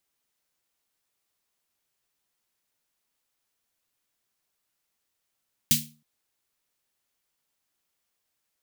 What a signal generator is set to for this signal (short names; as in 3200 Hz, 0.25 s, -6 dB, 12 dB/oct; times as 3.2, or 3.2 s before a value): snare drum length 0.32 s, tones 150 Hz, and 230 Hz, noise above 2600 Hz, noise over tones 9.5 dB, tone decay 0.40 s, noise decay 0.27 s